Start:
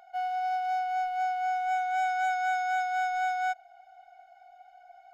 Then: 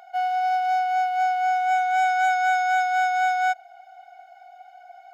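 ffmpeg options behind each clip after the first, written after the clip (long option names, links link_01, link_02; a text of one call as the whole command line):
ffmpeg -i in.wav -af "highpass=frequency=360:poles=1,volume=8dB" out.wav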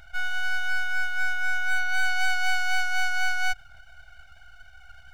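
ffmpeg -i in.wav -af "aeval=exprs='abs(val(0))':channel_layout=same" out.wav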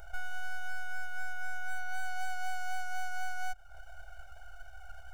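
ffmpeg -i in.wav -af "equalizer=frequency=125:width_type=o:width=1:gain=-11,equalizer=frequency=250:width_type=o:width=1:gain=-10,equalizer=frequency=500:width_type=o:width=1:gain=7,equalizer=frequency=2000:width_type=o:width=1:gain=-11,equalizer=frequency=4000:width_type=o:width=1:gain=-10,acompressor=threshold=-36dB:ratio=3,volume=4dB" out.wav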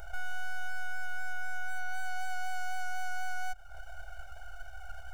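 ffmpeg -i in.wav -af "alimiter=level_in=4.5dB:limit=-24dB:level=0:latency=1:release=55,volume=-4.5dB,volume=4dB" out.wav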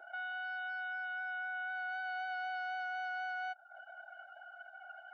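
ffmpeg -i in.wav -af "highpass=frequency=290:width=0.5412,highpass=frequency=290:width=1.3066,equalizer=frequency=450:width_type=q:width=4:gain=-8,equalizer=frequency=1100:width_type=q:width=4:gain=-7,equalizer=frequency=2400:width_type=q:width=4:gain=-4,lowpass=frequency=4000:width=0.5412,lowpass=frequency=4000:width=1.3066,afftdn=noise_reduction=20:noise_floor=-55,volume=1dB" out.wav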